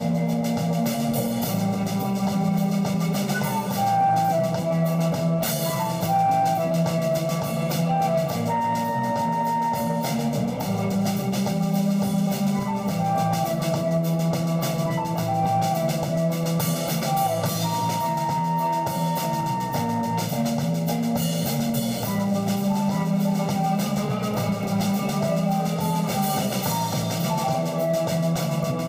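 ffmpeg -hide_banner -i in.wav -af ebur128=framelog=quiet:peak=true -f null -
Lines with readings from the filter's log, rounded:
Integrated loudness:
  I:         -23.7 LUFS
  Threshold: -33.7 LUFS
Loudness range:
  LRA:         1.6 LU
  Threshold: -43.7 LUFS
  LRA low:   -24.3 LUFS
  LRA high:  -22.7 LUFS
True peak:
  Peak:      -11.4 dBFS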